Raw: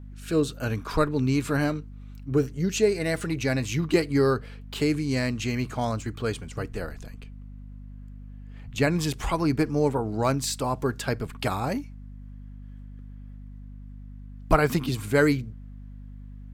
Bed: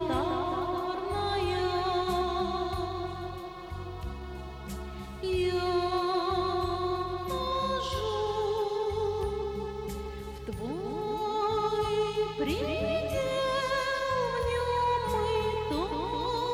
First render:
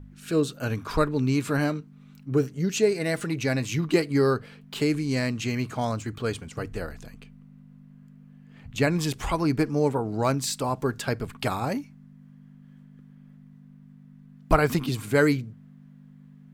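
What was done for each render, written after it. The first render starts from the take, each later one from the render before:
hum removal 50 Hz, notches 2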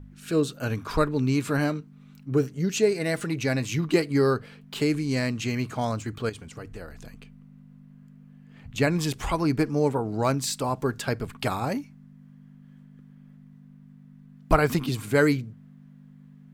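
0:06.29–0:07.04: downward compressor 2 to 1, threshold −40 dBFS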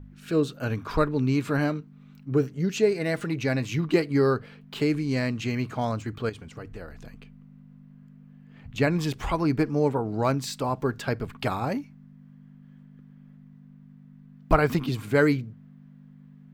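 parametric band 9,400 Hz −9 dB 1.5 octaves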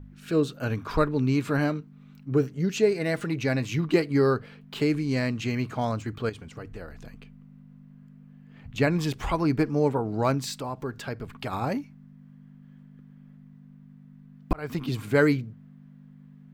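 0:10.58–0:11.53: downward compressor 1.5 to 1, threshold −39 dBFS
0:14.53–0:14.96: fade in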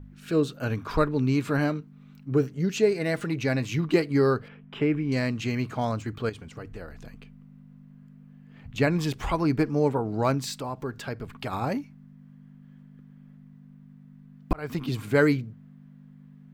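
0:04.48–0:05.12: Savitzky-Golay smoothing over 25 samples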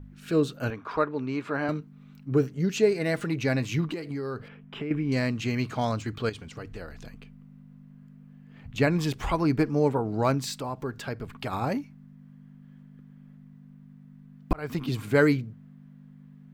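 0:00.70–0:01.69: resonant band-pass 970 Hz, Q 0.53
0:03.87–0:04.91: downward compressor 12 to 1, threshold −29 dBFS
0:05.58–0:07.09: parametric band 4,300 Hz +5 dB 1.8 octaves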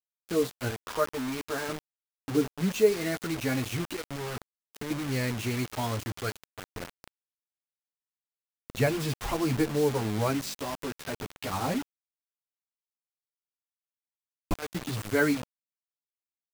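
multi-voice chorus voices 2, 0.22 Hz, delay 10 ms, depth 1.6 ms
bit reduction 6 bits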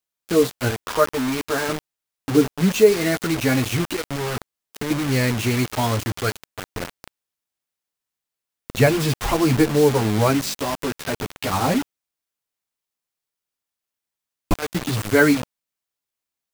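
level +9.5 dB
brickwall limiter −3 dBFS, peak gain reduction 2 dB

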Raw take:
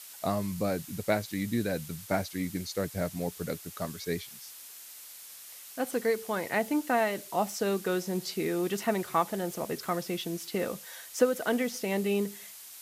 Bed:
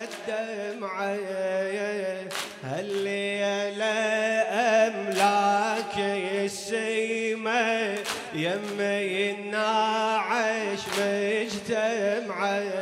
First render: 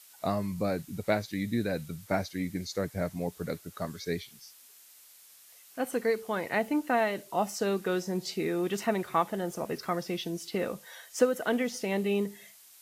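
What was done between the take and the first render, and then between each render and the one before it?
noise reduction from a noise print 8 dB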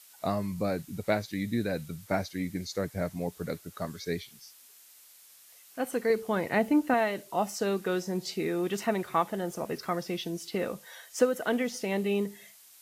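0:06.10–0:06.94: low-shelf EQ 400 Hz +7.5 dB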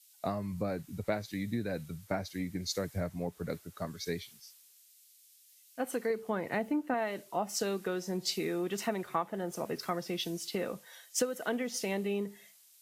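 downward compressor 5 to 1, threshold −30 dBFS, peak gain reduction 11.5 dB
multiband upward and downward expander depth 70%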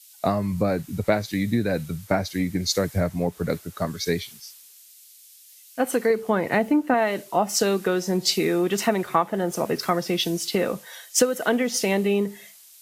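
level +11.5 dB

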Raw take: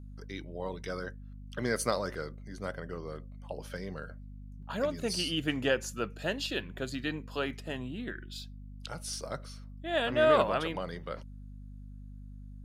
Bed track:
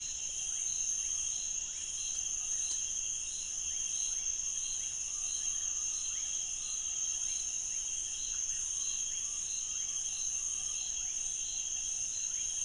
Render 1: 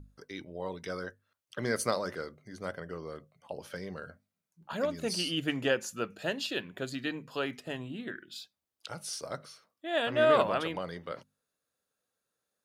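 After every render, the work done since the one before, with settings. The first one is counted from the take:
mains-hum notches 50/100/150/200/250 Hz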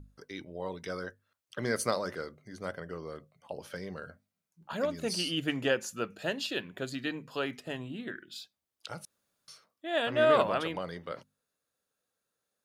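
0:09.05–0:09.48: fill with room tone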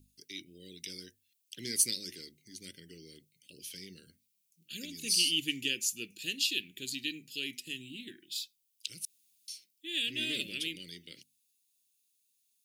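Chebyshev band-stop filter 340–2,500 Hz, order 3
spectral tilt +3.5 dB per octave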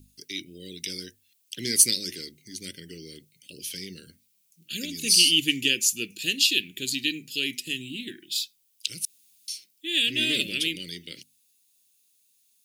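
level +9.5 dB

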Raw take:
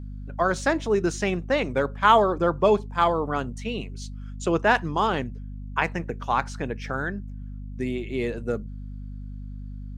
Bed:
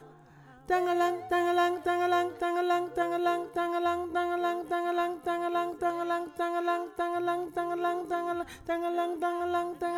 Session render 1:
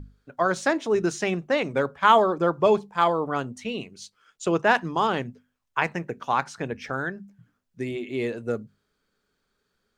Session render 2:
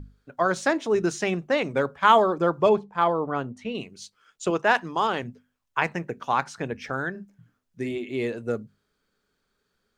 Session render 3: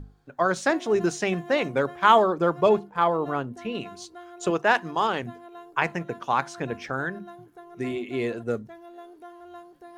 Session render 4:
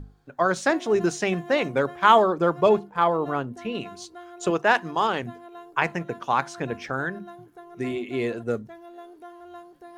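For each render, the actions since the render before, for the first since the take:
mains-hum notches 50/100/150/200/250 Hz
0:02.69–0:03.75: low-pass filter 2,000 Hz 6 dB per octave; 0:04.50–0:05.23: low-shelf EQ 230 Hz −9 dB; 0:07.10–0:07.98: double-tracking delay 43 ms −10 dB
mix in bed −14.5 dB
level +1 dB

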